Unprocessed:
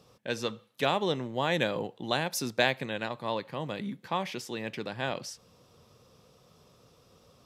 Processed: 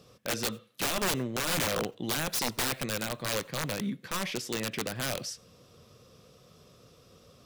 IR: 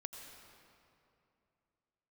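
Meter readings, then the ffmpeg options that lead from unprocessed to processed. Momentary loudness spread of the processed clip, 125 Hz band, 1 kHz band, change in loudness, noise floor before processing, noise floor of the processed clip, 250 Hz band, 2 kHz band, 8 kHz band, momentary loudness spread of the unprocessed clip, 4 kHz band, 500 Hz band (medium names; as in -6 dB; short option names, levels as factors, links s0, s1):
6 LU, +0.5 dB, -3.5 dB, +0.5 dB, -62 dBFS, -59 dBFS, 0.0 dB, -1.0 dB, +9.0 dB, 9 LU, +1.5 dB, -3.5 dB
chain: -filter_complex "[0:a]equalizer=f=880:w=4.2:g=-10,aeval=exprs='(mod(21.1*val(0)+1,2)-1)/21.1':c=same,asplit=2[s0][s1];[1:a]atrim=start_sample=2205,atrim=end_sample=4410[s2];[s1][s2]afir=irnorm=-1:irlink=0,volume=0.422[s3];[s0][s3]amix=inputs=2:normalize=0,volume=1.19"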